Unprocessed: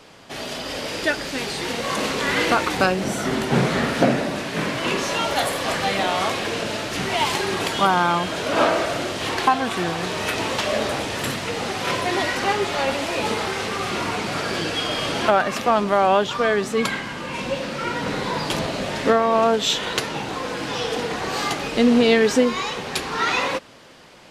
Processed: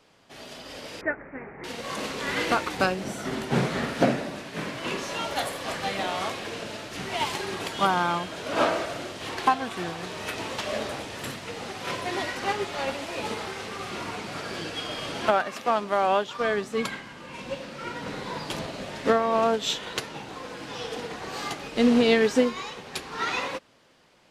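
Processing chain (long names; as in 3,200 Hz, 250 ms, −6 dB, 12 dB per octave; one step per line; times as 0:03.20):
0:01.01–0:01.64: Butterworth low-pass 2,200 Hz 72 dB per octave
0:15.31–0:16.41: low-shelf EQ 170 Hz −9.5 dB
expander for the loud parts 1.5 to 1, over −33 dBFS
level −3 dB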